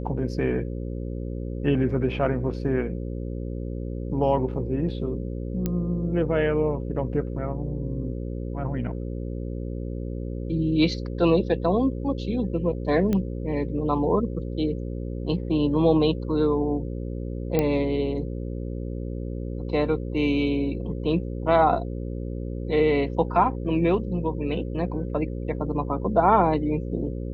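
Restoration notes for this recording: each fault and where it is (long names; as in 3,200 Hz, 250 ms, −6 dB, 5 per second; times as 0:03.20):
mains buzz 60 Hz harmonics 9 −31 dBFS
0:05.66: click −13 dBFS
0:13.13: click −14 dBFS
0:17.59: click −10 dBFS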